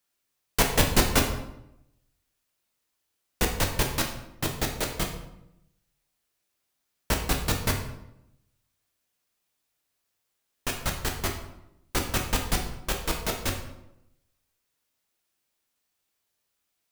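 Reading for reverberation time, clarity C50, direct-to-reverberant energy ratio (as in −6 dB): 0.85 s, 7.0 dB, 1.5 dB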